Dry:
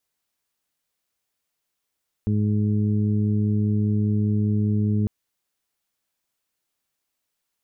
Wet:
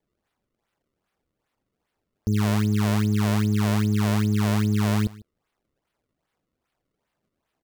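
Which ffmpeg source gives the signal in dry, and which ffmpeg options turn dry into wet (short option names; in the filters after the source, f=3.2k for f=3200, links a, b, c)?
-f lavfi -i "aevalsrc='0.0944*sin(2*PI*105*t)+0.075*sin(2*PI*210*t)+0.0211*sin(2*PI*315*t)+0.0168*sin(2*PI*420*t)':d=2.8:s=44100"
-af "acrusher=samples=31:mix=1:aa=0.000001:lfo=1:lforange=49.6:lforate=2.5,aecho=1:1:148:0.0841"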